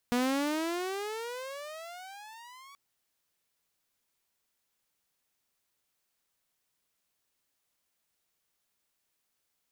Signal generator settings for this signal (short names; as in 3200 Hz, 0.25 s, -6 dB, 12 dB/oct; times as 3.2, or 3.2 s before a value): gliding synth tone saw, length 2.63 s, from 240 Hz, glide +27 st, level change -25 dB, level -22.5 dB